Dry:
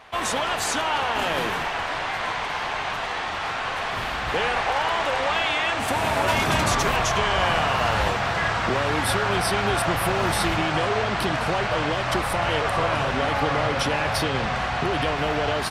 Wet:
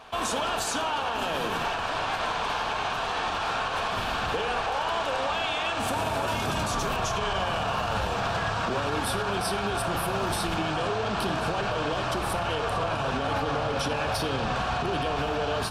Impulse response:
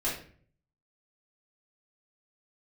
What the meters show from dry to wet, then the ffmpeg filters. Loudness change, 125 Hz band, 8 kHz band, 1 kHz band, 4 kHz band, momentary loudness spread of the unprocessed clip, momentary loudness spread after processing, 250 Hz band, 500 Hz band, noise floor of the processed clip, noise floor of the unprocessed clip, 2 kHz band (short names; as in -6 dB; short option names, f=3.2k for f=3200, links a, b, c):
-4.5 dB, -4.5 dB, -4.5 dB, -4.0 dB, -4.5 dB, 6 LU, 1 LU, -4.0 dB, -4.0 dB, -30 dBFS, -28 dBFS, -6.5 dB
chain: -filter_complex "[0:a]equalizer=f=2k:t=o:w=0.25:g=-13,asplit=2[a][b];[1:a]atrim=start_sample=2205,asetrate=29106,aresample=44100[c];[b][c]afir=irnorm=-1:irlink=0,volume=-18dB[d];[a][d]amix=inputs=2:normalize=0,alimiter=limit=-19dB:level=0:latency=1:release=86"